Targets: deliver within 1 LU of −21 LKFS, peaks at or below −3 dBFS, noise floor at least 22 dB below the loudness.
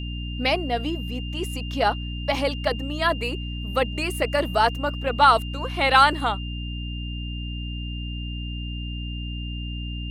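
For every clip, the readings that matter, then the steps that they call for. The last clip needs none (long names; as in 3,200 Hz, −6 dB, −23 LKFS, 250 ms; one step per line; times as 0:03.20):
mains hum 60 Hz; hum harmonics up to 300 Hz; level of the hum −29 dBFS; interfering tone 2,800 Hz; level of the tone −37 dBFS; integrated loudness −24.5 LKFS; sample peak −2.5 dBFS; target loudness −21.0 LKFS
→ mains-hum notches 60/120/180/240/300 Hz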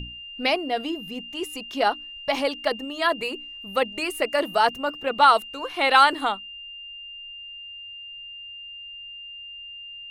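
mains hum none found; interfering tone 2,800 Hz; level of the tone −37 dBFS
→ notch filter 2,800 Hz, Q 30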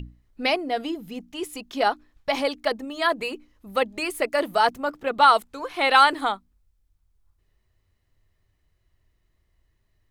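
interfering tone none found; integrated loudness −23.0 LKFS; sample peak −3.0 dBFS; target loudness −21.0 LKFS
→ level +2 dB
brickwall limiter −3 dBFS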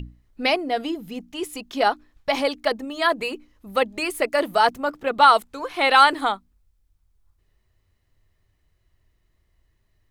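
integrated loudness −21.5 LKFS; sample peak −3.0 dBFS; background noise floor −68 dBFS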